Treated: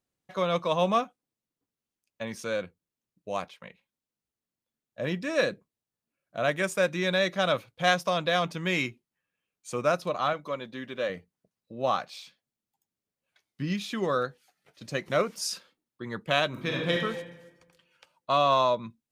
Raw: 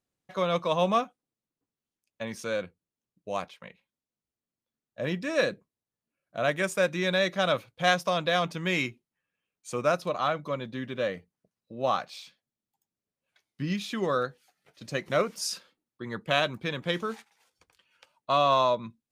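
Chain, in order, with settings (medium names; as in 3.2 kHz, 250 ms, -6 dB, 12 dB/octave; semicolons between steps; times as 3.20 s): 10.33–11.10 s: peaking EQ 83 Hz -11 dB 2.5 oct; 16.48–16.93 s: reverb throw, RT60 1.2 s, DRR -1 dB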